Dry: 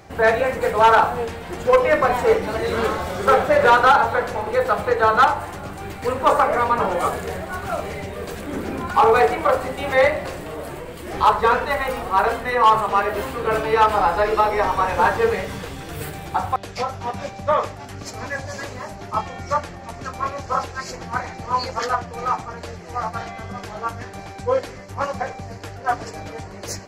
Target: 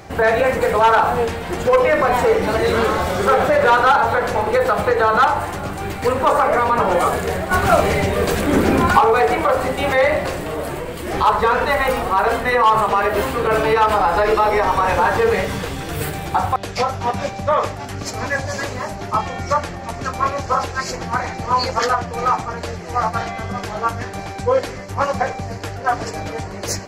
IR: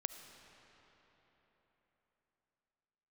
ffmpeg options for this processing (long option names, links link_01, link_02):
-filter_complex "[0:a]alimiter=limit=-14dB:level=0:latency=1:release=61,asettb=1/sr,asplit=3[link_01][link_02][link_03];[link_01]atrim=end=7.514[link_04];[link_02]atrim=start=7.51:end=8.99,asetpts=PTS-STARTPTS,afade=type=in:duration=0.004:curve=qsin,afade=type=out:start_time=1.476:duration=0.004:curve=qsin,acontrast=45[link_05];[link_03]atrim=start=8.986[link_06];[link_04][link_05]acrossfade=duration=0.004:curve1=hsin:curve2=qsin[link_07];[link_07][link_06]acrossfade=duration=0.004:curve1=qsin:curve2=hsin,volume=6.5dB"